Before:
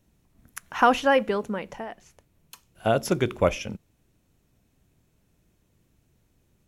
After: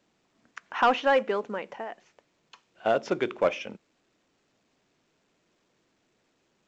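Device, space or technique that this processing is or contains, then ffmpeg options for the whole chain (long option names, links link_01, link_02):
telephone: -af "highpass=320,lowpass=3400,asoftclip=type=tanh:threshold=-12.5dB" -ar 16000 -c:a pcm_alaw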